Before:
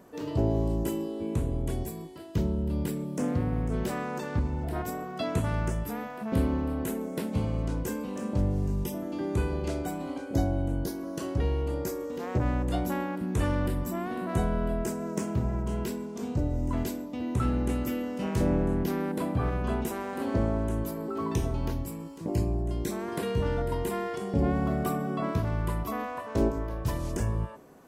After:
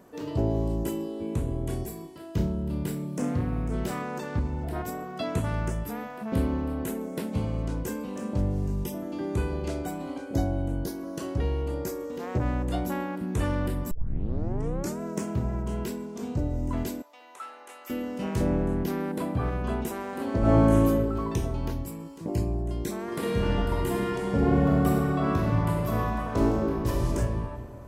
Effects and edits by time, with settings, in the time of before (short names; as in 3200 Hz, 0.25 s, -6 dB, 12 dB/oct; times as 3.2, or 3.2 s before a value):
1.44–4.02 flutter echo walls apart 5.7 m, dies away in 0.26 s
13.91 tape start 1.08 s
17.02–17.9 ladder high-pass 630 Hz, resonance 20%
20.4–20.86 reverb throw, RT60 1.2 s, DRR -10 dB
23.05–27.1 reverb throw, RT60 2.7 s, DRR -2 dB